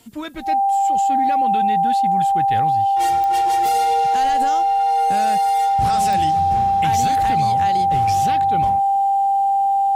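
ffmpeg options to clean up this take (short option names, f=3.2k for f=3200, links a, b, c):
-af "adeclick=t=4,bandreject=f=790:w=30,agate=range=-21dB:threshold=-9dB"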